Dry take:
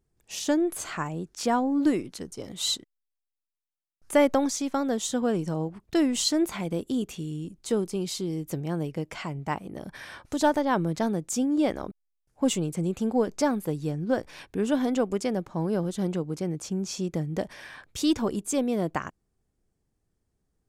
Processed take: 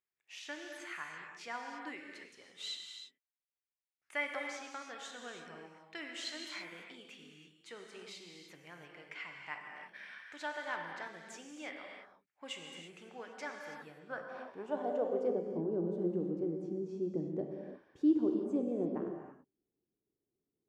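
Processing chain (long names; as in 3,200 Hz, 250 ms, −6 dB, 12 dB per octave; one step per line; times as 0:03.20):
reverb whose tail is shaped and stops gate 360 ms flat, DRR 1.5 dB
band-pass filter sweep 2,100 Hz → 340 Hz, 0:13.73–0:15.63
level −4 dB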